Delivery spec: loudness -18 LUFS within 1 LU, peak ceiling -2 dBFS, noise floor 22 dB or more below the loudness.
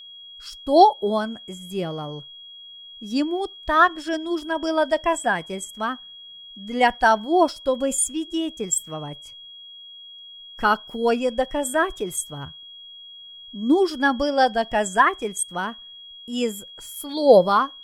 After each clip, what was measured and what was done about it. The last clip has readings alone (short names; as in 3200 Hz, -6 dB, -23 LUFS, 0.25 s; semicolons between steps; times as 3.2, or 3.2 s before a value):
steady tone 3300 Hz; tone level -40 dBFS; loudness -22.0 LUFS; peak -2.0 dBFS; loudness target -18.0 LUFS
-> notch 3300 Hz, Q 30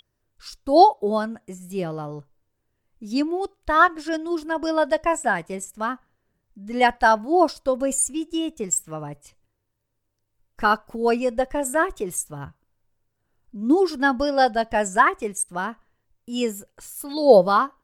steady tone none; loudness -22.0 LUFS; peak -2.0 dBFS; loudness target -18.0 LUFS
-> gain +4 dB; limiter -2 dBFS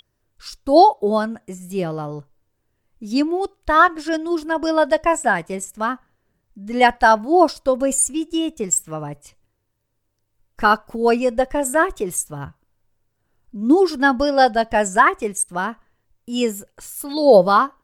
loudness -18.5 LUFS; peak -2.0 dBFS; noise floor -72 dBFS